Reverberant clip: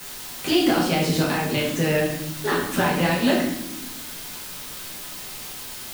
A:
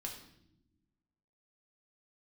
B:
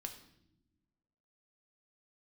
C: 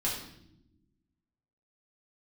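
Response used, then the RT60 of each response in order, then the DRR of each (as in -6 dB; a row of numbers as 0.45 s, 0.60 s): C; no single decay rate, no single decay rate, no single decay rate; 0.0 dB, 4.5 dB, -6.0 dB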